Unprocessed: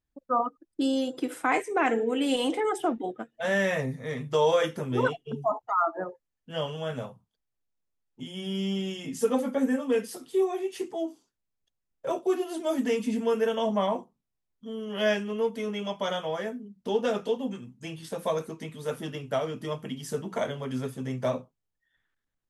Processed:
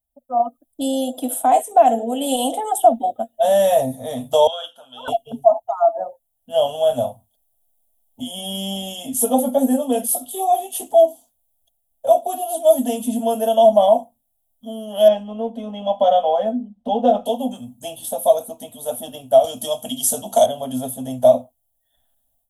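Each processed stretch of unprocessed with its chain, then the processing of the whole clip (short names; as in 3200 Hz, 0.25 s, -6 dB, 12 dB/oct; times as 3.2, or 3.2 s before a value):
4.47–5.08 double band-pass 2100 Hz, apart 1.1 oct + bell 2300 Hz +5 dB 0.25 oct + mismatched tape noise reduction encoder only
15.08–17.26 Bessel low-pass 2100 Hz + comb 3.9 ms, depth 52%
19.44–20.46 bell 6000 Hz +11.5 dB 2 oct + notch 2000 Hz, Q 23 + three-band squash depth 40%
whole clip: EQ curve 110 Hz 0 dB, 160 Hz -23 dB, 240 Hz +1 dB, 370 Hz -21 dB, 680 Hz +12 dB, 1100 Hz -13 dB, 2200 Hz -22 dB, 3300 Hz 0 dB, 4800 Hz -12 dB, 11000 Hz +15 dB; AGC gain up to 14 dB; gain -1 dB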